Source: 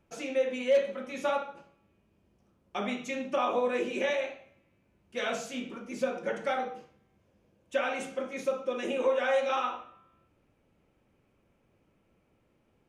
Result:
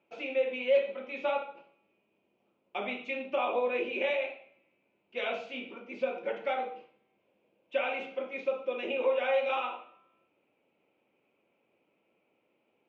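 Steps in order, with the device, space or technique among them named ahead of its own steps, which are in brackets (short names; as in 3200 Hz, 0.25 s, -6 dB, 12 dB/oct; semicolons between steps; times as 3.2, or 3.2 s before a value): phone earpiece (speaker cabinet 350–3400 Hz, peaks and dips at 1200 Hz -5 dB, 1700 Hz -9 dB, 2500 Hz +6 dB)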